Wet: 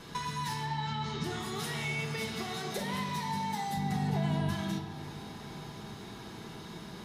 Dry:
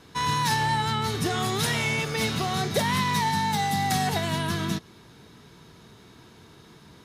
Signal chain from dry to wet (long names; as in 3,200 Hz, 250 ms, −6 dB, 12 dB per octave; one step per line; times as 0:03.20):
0:02.35–0:02.79: high-pass filter 240 Hz 12 dB per octave
downward compressor 8 to 1, threshold −39 dBFS, peak gain reduction 18 dB
0:00.65–0:01.24: low-pass filter 6,400 Hz 24 dB per octave
0:03.77–0:04.49: spectral tilt −2.5 dB per octave
delay with a band-pass on its return 315 ms, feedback 84%, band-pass 630 Hz, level −16.5 dB
convolution reverb RT60 1.8 s, pre-delay 5 ms, DRR 0.5 dB
level +2.5 dB